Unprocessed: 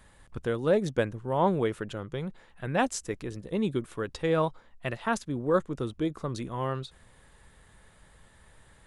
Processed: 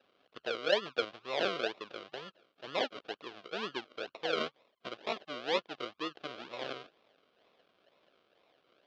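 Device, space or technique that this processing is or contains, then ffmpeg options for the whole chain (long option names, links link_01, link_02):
circuit-bent sampling toy: -af "acrusher=samples=40:mix=1:aa=0.000001:lfo=1:lforange=24:lforate=2.1,lowpass=6400,highpass=580,equalizer=frequency=880:width_type=q:width=4:gain=-8,equalizer=frequency=1900:width_type=q:width=4:gain=-7,equalizer=frequency=3200:width_type=q:width=4:gain=4,lowpass=frequency=4500:width=0.5412,lowpass=frequency=4500:width=1.3066,volume=-1.5dB"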